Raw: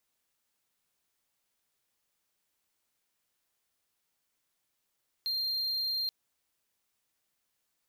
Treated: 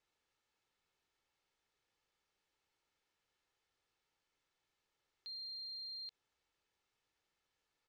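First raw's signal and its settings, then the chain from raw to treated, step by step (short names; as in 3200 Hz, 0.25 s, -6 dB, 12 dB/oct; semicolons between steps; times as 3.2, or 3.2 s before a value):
tone triangle 4190 Hz -27.5 dBFS 0.83 s
comb 2.3 ms, depth 38%; limiter -37.5 dBFS; air absorption 120 m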